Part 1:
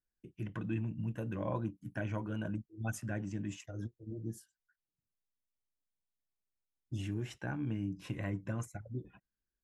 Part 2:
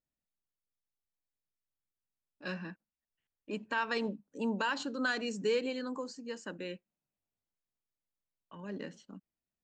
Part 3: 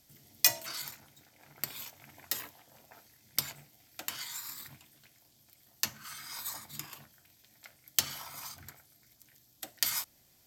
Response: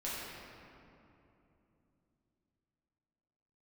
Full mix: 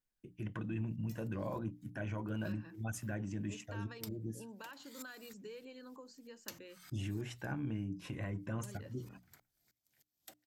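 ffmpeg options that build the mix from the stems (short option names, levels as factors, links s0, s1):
-filter_complex "[0:a]alimiter=level_in=2:limit=0.0631:level=0:latency=1:release=10,volume=0.501,volume=1,asplit=2[s0][s1];[1:a]acompressor=threshold=0.00708:ratio=3,volume=0.422[s2];[2:a]aeval=exprs='val(0)*pow(10,-26*if(lt(mod(-3.2*n/s,1),2*abs(-3.2)/1000),1-mod(-3.2*n/s,1)/(2*abs(-3.2)/1000),(mod(-3.2*n/s,1)-2*abs(-3.2)/1000)/(1-2*abs(-3.2)/1000))/20)':c=same,adelay=650,volume=0.422[s3];[s1]apad=whole_len=490271[s4];[s3][s4]sidechaincompress=threshold=0.00251:ratio=5:attack=41:release=263[s5];[s0][s2][s5]amix=inputs=3:normalize=0,bandreject=f=60:t=h:w=6,bandreject=f=120:t=h:w=6,bandreject=f=180:t=h:w=6,bandreject=f=240:t=h:w=6,bandreject=f=300:t=h:w=6"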